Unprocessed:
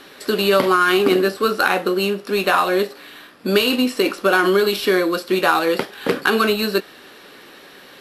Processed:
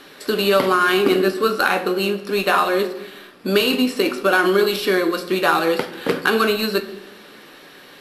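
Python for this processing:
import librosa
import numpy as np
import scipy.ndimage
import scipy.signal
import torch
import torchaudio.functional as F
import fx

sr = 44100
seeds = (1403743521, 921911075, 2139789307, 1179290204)

y = fx.room_shoebox(x, sr, seeds[0], volume_m3=470.0, walls='mixed', distance_m=0.42)
y = F.gain(torch.from_numpy(y), -1.0).numpy()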